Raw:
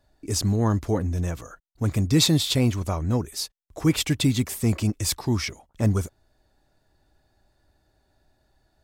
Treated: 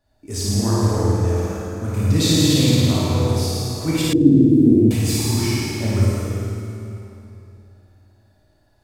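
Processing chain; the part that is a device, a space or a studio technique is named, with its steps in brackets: tunnel (flutter echo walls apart 9.4 m, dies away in 1.2 s; reverberation RT60 2.9 s, pre-delay 14 ms, DRR -6 dB); 4.13–4.91 s: FFT filter 130 Hz 0 dB, 340 Hz +11 dB, 1.3 kHz -28 dB; trim -5 dB

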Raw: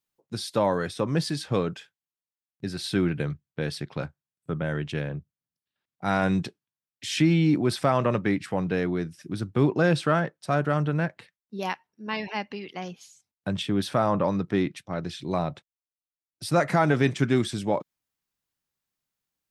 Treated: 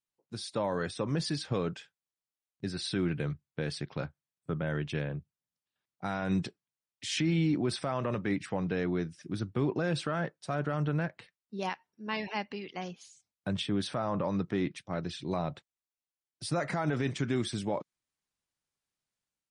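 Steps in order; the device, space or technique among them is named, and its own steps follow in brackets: 9.13–9.70 s: treble shelf 10 kHz -4 dB; low-bitrate web radio (level rider gain up to 5.5 dB; peak limiter -12 dBFS, peak gain reduction 8 dB; trim -8.5 dB; MP3 40 kbps 48 kHz)

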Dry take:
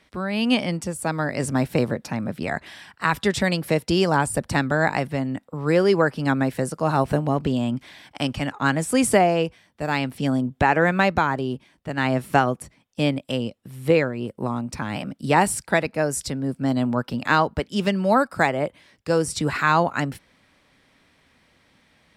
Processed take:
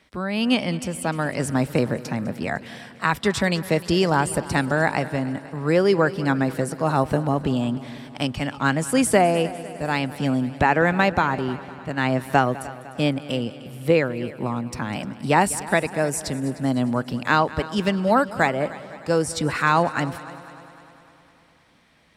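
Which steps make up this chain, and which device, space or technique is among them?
multi-head tape echo (multi-head delay 101 ms, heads second and third, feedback 58%, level -18.5 dB; wow and flutter 14 cents)

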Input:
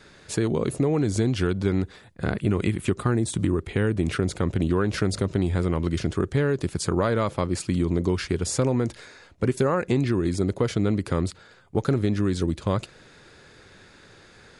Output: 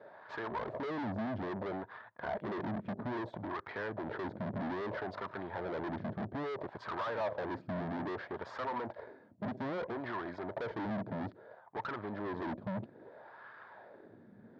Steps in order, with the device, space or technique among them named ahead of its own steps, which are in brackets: wah-wah guitar rig (wah-wah 0.61 Hz 210–1200 Hz, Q 3.1; valve stage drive 47 dB, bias 0.8; cabinet simulation 93–4100 Hz, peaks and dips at 110 Hz +8 dB, 220 Hz +3 dB, 630 Hz +9 dB, 930 Hz +7 dB, 1.7 kHz +7 dB, 2.7 kHz -6 dB); trim +8.5 dB

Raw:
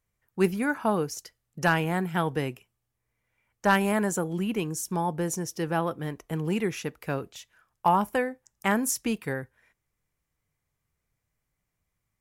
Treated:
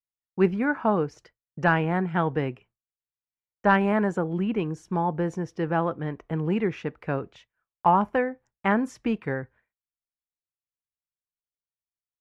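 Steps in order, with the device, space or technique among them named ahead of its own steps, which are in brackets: hearing-loss simulation (low-pass 2.1 kHz 12 dB/octave; expander -50 dBFS); trim +2.5 dB

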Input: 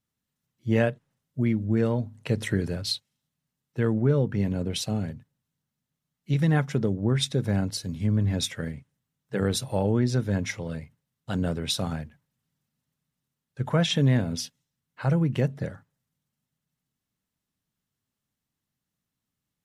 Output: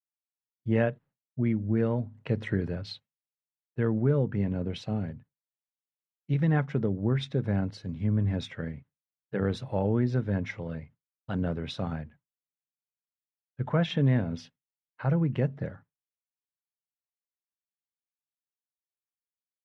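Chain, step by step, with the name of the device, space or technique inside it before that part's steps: hearing-loss simulation (low-pass 2.4 kHz 12 dB/octave; expander -45 dBFS); trim -2.5 dB

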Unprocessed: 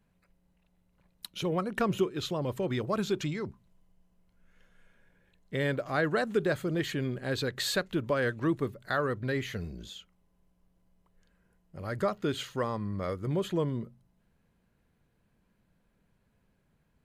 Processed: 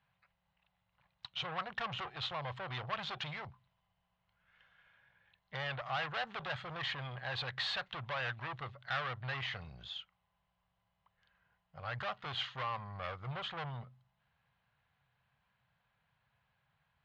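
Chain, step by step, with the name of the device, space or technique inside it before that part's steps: scooped metal amplifier (valve stage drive 35 dB, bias 0.65; cabinet simulation 110–3500 Hz, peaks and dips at 130 Hz +6 dB, 190 Hz -4 dB, 420 Hz -4 dB, 780 Hz +7 dB, 1.1 kHz +4 dB, 2.4 kHz -3 dB; amplifier tone stack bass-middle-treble 10-0-10); trim +10.5 dB

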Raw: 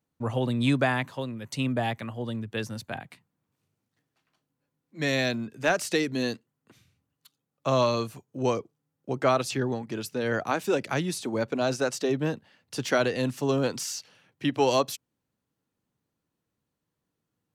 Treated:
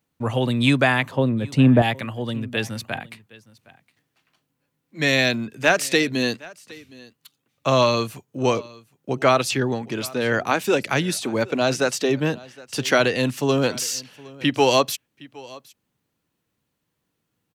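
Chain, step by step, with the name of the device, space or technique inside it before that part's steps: 1.11–1.82 s: tilt shelf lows +9.5 dB, about 1.4 kHz; presence and air boost (peaking EQ 2.6 kHz +5 dB 1.4 oct; treble shelf 9.6 kHz +5 dB); delay 764 ms -22 dB; trim +5 dB

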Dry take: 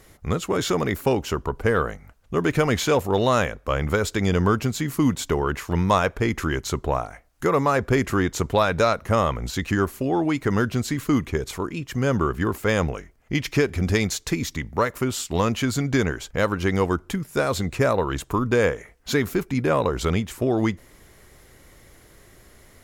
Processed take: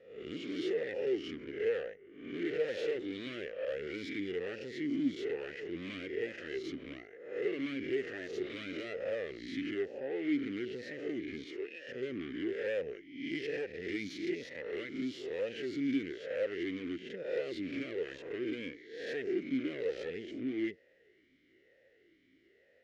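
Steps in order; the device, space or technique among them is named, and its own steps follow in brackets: reverse spectral sustain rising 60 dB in 0.74 s; low-pass 5.9 kHz 24 dB/octave; dynamic bell 5.4 kHz, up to +6 dB, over -47 dBFS, Q 1.6; 11.46–11.87 s: high-pass 210 Hz -> 440 Hz 12 dB/octave; talk box (valve stage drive 22 dB, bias 0.8; talking filter e-i 1.1 Hz)

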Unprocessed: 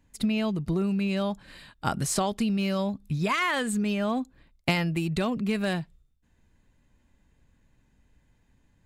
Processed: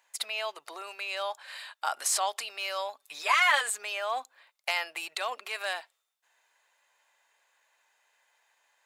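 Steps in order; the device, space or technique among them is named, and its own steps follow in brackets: clipper into limiter (hard clipper -15 dBFS, distortion -29 dB; peak limiter -23 dBFS, peak gain reduction 8 dB); inverse Chebyshev high-pass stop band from 200 Hz, stop band 60 dB; 2.98–3.61 s: comb 6.9 ms, depth 87%; trim +6.5 dB

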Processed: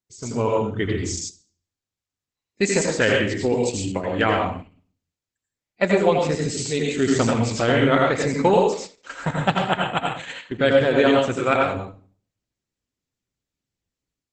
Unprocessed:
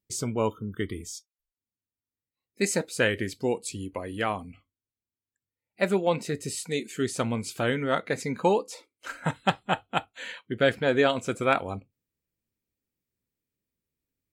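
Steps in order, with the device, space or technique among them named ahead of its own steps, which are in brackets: speakerphone in a meeting room (reverberation RT60 0.45 s, pre-delay 79 ms, DRR 0 dB; level rider gain up to 10.5 dB; gate -30 dBFS, range -8 dB; trim -2.5 dB; Opus 12 kbps 48 kHz)

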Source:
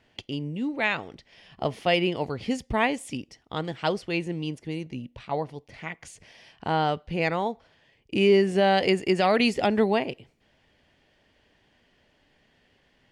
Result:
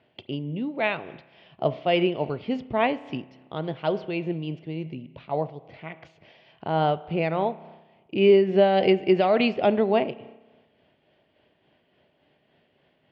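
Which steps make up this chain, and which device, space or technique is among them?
low-pass 8.3 kHz; combo amplifier with spring reverb and tremolo (spring tank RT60 1.2 s, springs 31 ms, chirp 50 ms, DRR 15 dB; tremolo 3.5 Hz, depth 37%; cabinet simulation 100–3700 Hz, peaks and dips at 150 Hz +5 dB, 370 Hz +5 dB, 630 Hz +7 dB, 1.8 kHz -5 dB)

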